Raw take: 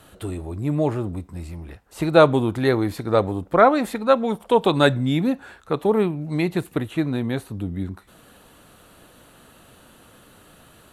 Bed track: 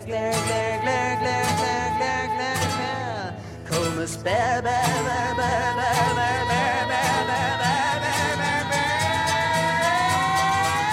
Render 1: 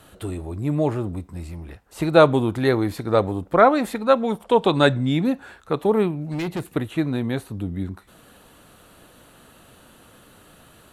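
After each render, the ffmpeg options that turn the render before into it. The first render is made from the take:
-filter_complex "[0:a]asettb=1/sr,asplit=3[a][b][c];[a]atrim=end=4.454[d];[b]atrim=start=4.45:end=5.25,asetpts=PTS-STARTPTS,afade=t=in:d=0.004:c=qsin,afade=t=out:st=0.796:d=0.004:c=qsin,lowpass=8.8k[e];[c]atrim=start=5.246[f];[d][e]acrossfade=d=0.004:c1=hsin:c2=qsin[g];[g][f]acrossfade=d=0.004:c1=qsin:c2=hsin,asettb=1/sr,asplit=3[h][i][j];[h]atrim=end=6.204[k];[i]atrim=start=6.2:end=6.73,asetpts=PTS-STARTPTS,afade=t=in:d=0.004:c=qsin,afade=t=out:st=0.526:d=0.004:c=qsin,asoftclip=type=hard:threshold=-23dB[l];[j]atrim=start=6.726[m];[k][l]acrossfade=d=0.004:c1=hsin:c2=qsin[n];[n][m]acrossfade=d=0.004:c1=qsin:c2=hsin"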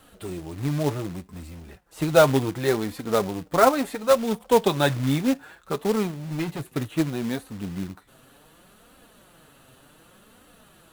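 -af "flanger=delay=3.7:depth=4.2:regen=24:speed=0.67:shape=triangular,acrusher=bits=3:mode=log:mix=0:aa=0.000001"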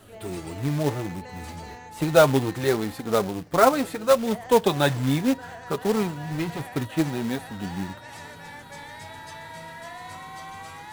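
-filter_complex "[1:a]volume=-18.5dB[a];[0:a][a]amix=inputs=2:normalize=0"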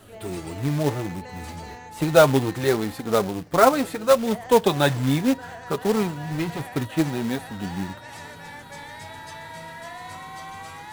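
-af "volume=1.5dB"

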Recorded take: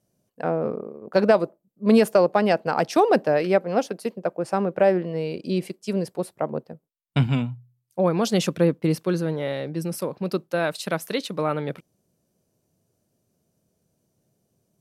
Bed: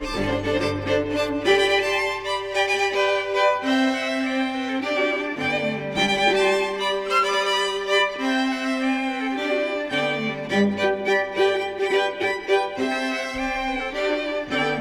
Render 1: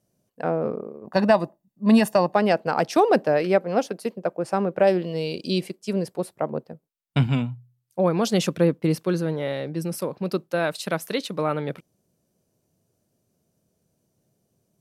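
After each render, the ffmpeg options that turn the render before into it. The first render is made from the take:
-filter_complex "[0:a]asettb=1/sr,asplit=3[a][b][c];[a]atrim=end=1.044[d];[b]atrim=start=1.04:end=2.35,asetpts=PTS-STARTPTS,afade=t=in:d=0.004:c=qsin,afade=t=out:st=1.306:d=0.004:c=qsin,aecho=1:1:1.1:0.65,atrim=end_sample=57771[e];[c]atrim=start=2.346[f];[d][e]acrossfade=d=0.004:c1=hsin:c2=qsin[g];[g][f]acrossfade=d=0.004:c1=qsin:c2=hsin,asettb=1/sr,asplit=3[h][i][j];[h]atrim=end=4.874[k];[i]atrim=start=4.87:end=5.61,asetpts=PTS-STARTPTS,afade=t=in:d=0.004:c=qsin,afade=t=out:st=0.736:d=0.004:c=qsin,highshelf=f=2.5k:t=q:w=1.5:g=8[l];[j]atrim=start=5.606[m];[k][l]acrossfade=d=0.004:c1=hsin:c2=qsin[n];[n][m]acrossfade=d=0.004:c1=qsin:c2=hsin"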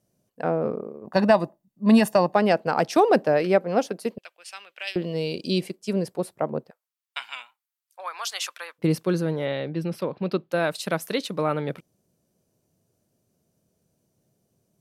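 -filter_complex "[0:a]asettb=1/sr,asplit=3[a][b][c];[a]atrim=end=4.184[d];[b]atrim=start=4.18:end=4.96,asetpts=PTS-STARTPTS,afade=t=in:d=0.004:c=qsin,afade=t=out:st=0.776:d=0.004:c=qsin,highpass=f=2.9k:t=q:w=2.6[e];[c]atrim=start=4.956[f];[d][e]acrossfade=d=0.004:c1=hsin:c2=qsin[g];[g][f]acrossfade=d=0.004:c1=qsin:c2=hsin,asplit=3[h][i][j];[h]afade=t=out:st=6.69:d=0.02[k];[i]highpass=f=1k:w=0.5412,highpass=f=1k:w=1.3066,afade=t=in:st=6.69:d=0.02,afade=t=out:st=8.78:d=0.02[l];[j]afade=t=in:st=8.78:d=0.02[m];[k][l][m]amix=inputs=3:normalize=0,asettb=1/sr,asplit=3[n][o][p];[n]atrim=end=9.454[q];[o]atrim=start=9.45:end=10.52,asetpts=PTS-STARTPTS,afade=t=in:d=0.004:c=qsin,afade=t=out:st=1.066:d=0.004:c=qsin,highshelf=f=5.1k:t=q:w=1.5:g=-12.5[r];[p]atrim=start=10.516[s];[q][r]acrossfade=d=0.004:c1=hsin:c2=qsin[t];[t][s]acrossfade=d=0.004:c1=qsin:c2=hsin"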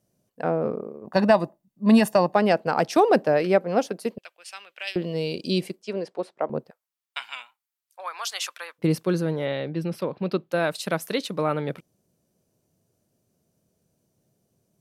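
-filter_complex "[0:a]asettb=1/sr,asplit=3[a][b][c];[a]atrim=end=5.824[d];[b]atrim=start=5.82:end=6.5,asetpts=PTS-STARTPTS,afade=t=in:d=0.004:c=qsin,afade=t=out:st=0.676:d=0.004:c=qsin,highpass=340,lowpass=4.5k[e];[c]atrim=start=6.496[f];[d][e]acrossfade=d=0.004:c1=hsin:c2=qsin[g];[g][f]acrossfade=d=0.004:c1=qsin:c2=hsin"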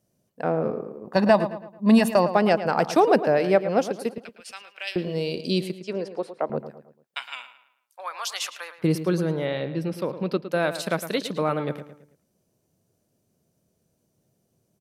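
-filter_complex "[0:a]asplit=2[a][b];[b]adelay=110,lowpass=f=3.8k:p=1,volume=-11.5dB,asplit=2[c][d];[d]adelay=110,lowpass=f=3.8k:p=1,volume=0.42,asplit=2[e][f];[f]adelay=110,lowpass=f=3.8k:p=1,volume=0.42,asplit=2[g][h];[h]adelay=110,lowpass=f=3.8k:p=1,volume=0.42[i];[a][c][e][g][i]amix=inputs=5:normalize=0"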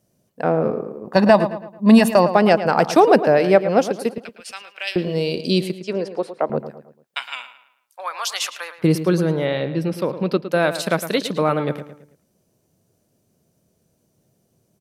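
-af "volume=5.5dB,alimiter=limit=-1dB:level=0:latency=1"

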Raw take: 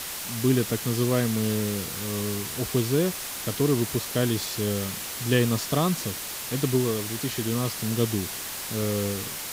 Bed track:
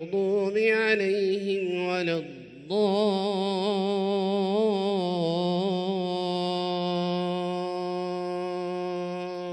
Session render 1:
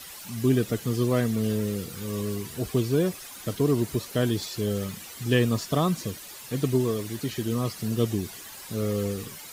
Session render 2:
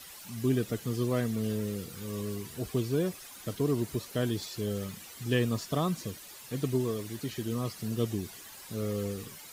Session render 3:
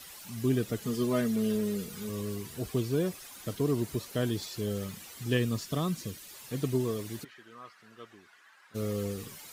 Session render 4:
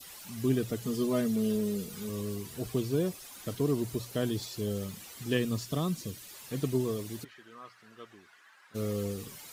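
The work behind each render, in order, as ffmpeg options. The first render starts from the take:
-af "afftdn=nr=12:nf=-35"
-af "volume=-5.5dB"
-filter_complex "[0:a]asettb=1/sr,asplit=3[a][b][c];[a]atrim=end=0.814[d];[b]atrim=start=0.81:end=2.09,asetpts=PTS-STARTPTS,afade=t=in:d=0.004:c=qsin,afade=t=out:st=1.276:d=0.004:c=qsin,aecho=1:1:4.8:0.65,atrim=end_sample=56448[e];[c]atrim=start=2.086[f];[d][e]acrossfade=d=0.004:c1=hsin:c2=qsin[g];[g][f]acrossfade=d=0.004:c1=qsin:c2=hsin,asettb=1/sr,asplit=3[h][i][j];[h]atrim=end=5.374[k];[i]atrim=start=5.37:end=6.34,asetpts=PTS-STARTPTS,afade=t=in:d=0.004:c=qsin,afade=t=out:st=0.966:d=0.004:c=qsin,equalizer=f=770:w=0.95:g=-5.5[l];[j]atrim=start=6.336[m];[k][l]acrossfade=d=0.004:c1=hsin:c2=qsin[n];[n][m]acrossfade=d=0.004:c1=qsin:c2=hsin,asplit=3[o][p][q];[o]afade=t=out:st=7.23:d=0.02[r];[p]bandpass=f=1.5k:t=q:w=2.4,afade=t=in:st=7.23:d=0.02,afade=t=out:st=8.74:d=0.02[s];[q]afade=t=in:st=8.74:d=0.02[t];[r][s][t]amix=inputs=3:normalize=0"
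-af "bandreject=f=60:t=h:w=6,bandreject=f=120:t=h:w=6,adynamicequalizer=threshold=0.00224:dfrequency=1700:dqfactor=1.1:tfrequency=1700:tqfactor=1.1:attack=5:release=100:ratio=0.375:range=3:mode=cutabove:tftype=bell"

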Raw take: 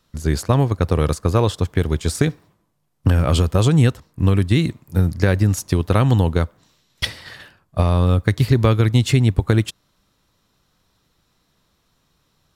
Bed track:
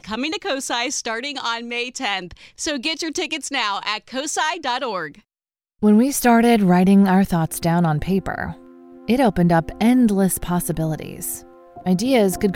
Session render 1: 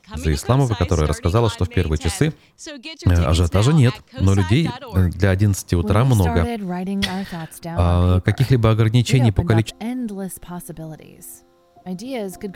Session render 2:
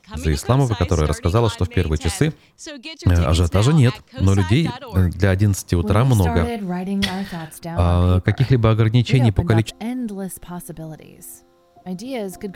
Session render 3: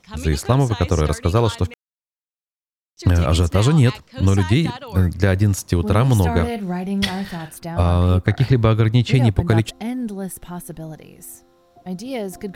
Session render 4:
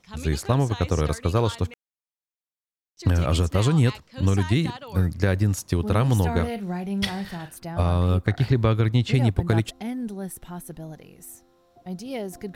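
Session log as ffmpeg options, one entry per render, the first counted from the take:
-filter_complex "[1:a]volume=-10.5dB[a];[0:a][a]amix=inputs=2:normalize=0"
-filter_complex "[0:a]asettb=1/sr,asplit=3[a][b][c];[a]atrim=end=6.324[d];[b]atrim=start=6.32:end=7.56,asetpts=PTS-STARTPTS,afade=t=in:d=0.004:c=qsin,afade=t=out:st=1.236:d=0.004:c=qsin,asplit=2[e][f];[f]adelay=40,volume=-12.5dB[g];[e][g]amix=inputs=2:normalize=0,atrim=end_sample=54684[h];[c]atrim=start=7.556[i];[d][h]acrossfade=d=0.004:c1=hsin:c2=qsin[j];[j][i]acrossfade=d=0.004:c1=qsin:c2=hsin,asettb=1/sr,asplit=3[k][l][m];[k]atrim=end=8.234[n];[l]atrim=start=8.23:end=9.14,asetpts=PTS-STARTPTS,afade=t=in:d=0.004:c=qsin,afade=t=out:st=0.906:d=0.004:c=qsin,acrossover=split=5100[o][p];[p]acompressor=threshold=-50dB:ratio=4:attack=1:release=60[q];[o][q]amix=inputs=2:normalize=0[r];[m]atrim=start=9.136[s];[n][r]acrossfade=d=0.004:c1=hsin:c2=qsin[t];[t][s]acrossfade=d=0.004:c1=qsin:c2=hsin"
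-filter_complex "[0:a]asplit=3[a][b][c];[a]atrim=end=1.74,asetpts=PTS-STARTPTS,afade=t=out:st=1.736:d=0.004:c=hsin[d];[b]atrim=start=1.74:end=2.97,asetpts=PTS-STARTPTS,volume=0[e];[c]atrim=start=2.97,asetpts=PTS-STARTPTS,afade=t=in:d=0.004:c=hsin[f];[d][e][f]concat=n=3:v=0:a=1"
-af "volume=-5dB"

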